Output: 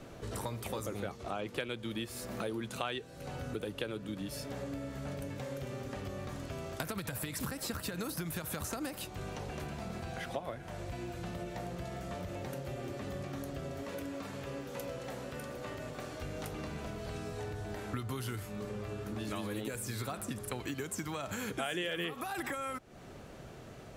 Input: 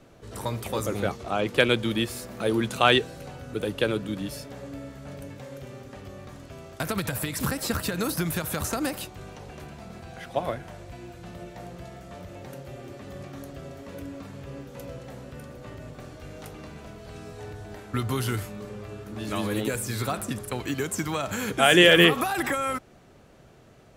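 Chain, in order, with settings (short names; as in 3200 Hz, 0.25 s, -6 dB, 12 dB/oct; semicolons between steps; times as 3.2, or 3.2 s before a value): 13.85–16.21 low shelf 220 Hz -10.5 dB; compressor 5:1, threshold -41 dBFS, peak gain reduction 25 dB; gain +4 dB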